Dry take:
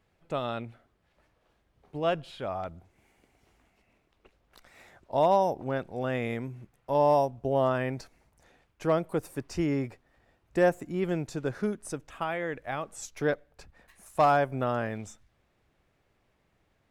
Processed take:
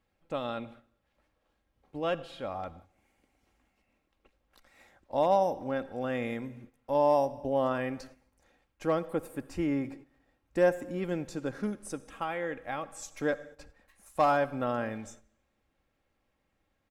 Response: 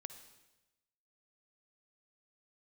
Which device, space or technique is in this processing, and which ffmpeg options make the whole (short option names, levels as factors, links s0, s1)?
keyed gated reverb: -filter_complex "[0:a]asettb=1/sr,asplit=3[s0][s1][s2];[s0]atrim=end=9.064[s3];[s1]atrim=start=9.06:end=9.85,asetpts=PTS-STARTPTS,afade=t=in:d=0.004:c=qsin,afade=t=out:st=0.786:d=0.004:c=qsin,equalizer=f=5600:t=o:w=0.67:g=-8.5[s4];[s2]atrim=start=9.846[s5];[s3][s4]acrossfade=d=0.004:c1=hsin:c2=qsin[s6];[s6][s5]acrossfade=d=0.004:c1=qsin:c2=hsin,aecho=1:1:3.7:0.41,asplit=3[s7][s8][s9];[1:a]atrim=start_sample=2205[s10];[s8][s10]afir=irnorm=-1:irlink=0[s11];[s9]apad=whole_len=745633[s12];[s11][s12]sidechaingate=range=0.251:threshold=0.00282:ratio=16:detection=peak,volume=1.41[s13];[s7][s13]amix=inputs=2:normalize=0,volume=0.398"